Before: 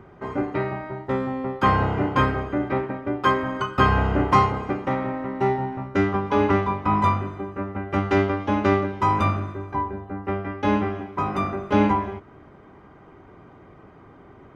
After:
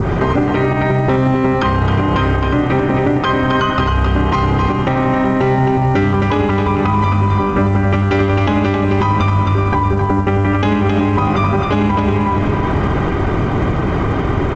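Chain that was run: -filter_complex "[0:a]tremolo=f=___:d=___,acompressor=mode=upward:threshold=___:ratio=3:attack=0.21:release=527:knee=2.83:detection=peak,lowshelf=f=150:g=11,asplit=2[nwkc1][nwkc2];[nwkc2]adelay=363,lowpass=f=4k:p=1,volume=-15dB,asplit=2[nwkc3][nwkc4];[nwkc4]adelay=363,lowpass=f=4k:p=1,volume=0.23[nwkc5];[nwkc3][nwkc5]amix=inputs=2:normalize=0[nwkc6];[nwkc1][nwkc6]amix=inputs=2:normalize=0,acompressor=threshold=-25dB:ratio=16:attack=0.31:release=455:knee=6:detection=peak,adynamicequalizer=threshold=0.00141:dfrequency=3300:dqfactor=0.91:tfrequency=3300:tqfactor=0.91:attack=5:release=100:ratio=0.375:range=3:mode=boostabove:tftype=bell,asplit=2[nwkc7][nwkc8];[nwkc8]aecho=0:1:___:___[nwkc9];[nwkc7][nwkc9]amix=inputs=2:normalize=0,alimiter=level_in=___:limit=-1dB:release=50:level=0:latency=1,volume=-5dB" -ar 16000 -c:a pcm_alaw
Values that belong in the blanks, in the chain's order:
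140, 0.182, -29dB, 265, 0.447, 26dB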